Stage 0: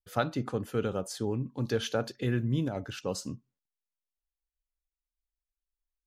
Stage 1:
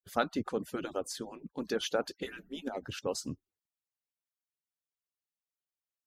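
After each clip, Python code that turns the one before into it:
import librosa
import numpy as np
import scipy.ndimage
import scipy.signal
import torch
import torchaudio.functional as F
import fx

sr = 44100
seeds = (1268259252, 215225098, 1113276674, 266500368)

y = fx.hpss_only(x, sr, part='percussive')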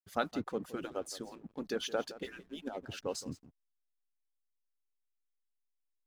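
y = x + 10.0 ** (-16.0 / 20.0) * np.pad(x, (int(168 * sr / 1000.0), 0))[:len(x)]
y = fx.backlash(y, sr, play_db=-52.0)
y = y * 10.0 ** (-3.0 / 20.0)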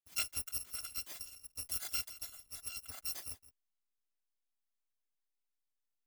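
y = fx.bit_reversed(x, sr, seeds[0], block=256)
y = y * 10.0 ** (-3.5 / 20.0)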